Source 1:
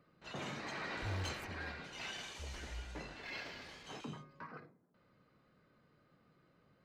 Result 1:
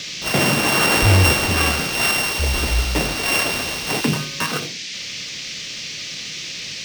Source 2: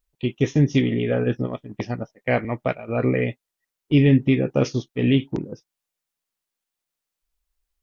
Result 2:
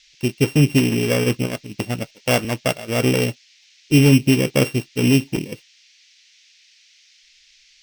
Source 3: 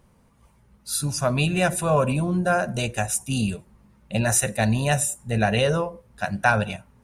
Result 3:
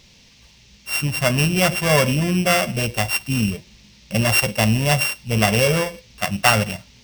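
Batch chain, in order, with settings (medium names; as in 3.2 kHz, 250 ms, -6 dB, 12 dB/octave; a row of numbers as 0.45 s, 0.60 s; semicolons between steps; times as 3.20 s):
sorted samples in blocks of 16 samples; band noise 2–6.1 kHz -57 dBFS; normalise loudness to -19 LUFS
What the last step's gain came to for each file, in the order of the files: +26.0 dB, +3.0 dB, +3.5 dB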